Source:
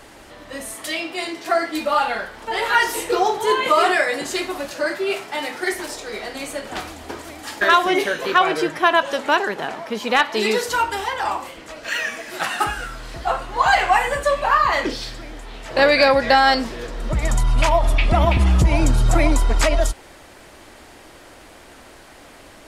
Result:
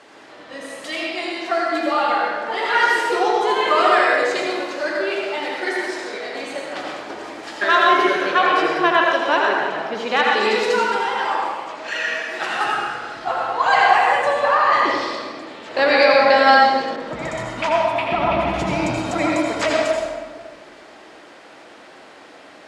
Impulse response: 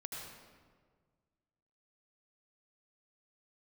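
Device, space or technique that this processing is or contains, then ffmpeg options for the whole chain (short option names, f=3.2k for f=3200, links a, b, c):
supermarket ceiling speaker: -filter_complex "[0:a]highpass=250,lowpass=5.6k[a];[1:a]atrim=start_sample=2205[b];[a][b]afir=irnorm=-1:irlink=0,asettb=1/sr,asplit=3[c][d][e];[c]atrim=end=16.964[f];[d]atrim=start=16.96:end=18.54,asetpts=PTS-STARTPTS,afade=t=in:d=0.004:c=qsin,afade=t=out:st=1.576:d=0.004:c=qsin,adynamicequalizer=threshold=0.00891:dfrequency=3400:dqfactor=0.7:tfrequency=3400:tqfactor=0.7:attack=5:release=100:ratio=0.375:range=4:mode=cutabove:tftype=highshelf[g];[e]atrim=start=18.536[h];[f][g]acrossfade=d=0.004:c1=hsin:c2=qsin[i];[i][h]acrossfade=d=0.004:c1=qsin:c2=hsin,volume=3dB"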